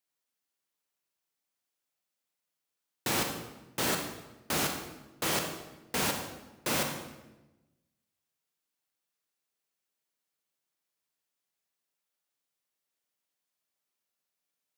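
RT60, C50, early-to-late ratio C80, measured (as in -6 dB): 1.1 s, 5.0 dB, 7.5 dB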